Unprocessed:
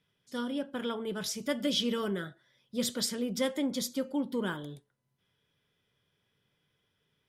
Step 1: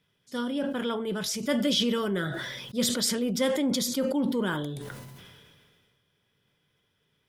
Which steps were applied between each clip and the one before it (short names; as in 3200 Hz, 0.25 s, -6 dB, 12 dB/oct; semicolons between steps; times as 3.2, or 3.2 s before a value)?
sustainer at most 29 dB/s; gain +3.5 dB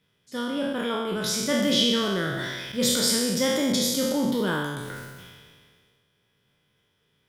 spectral trails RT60 1.25 s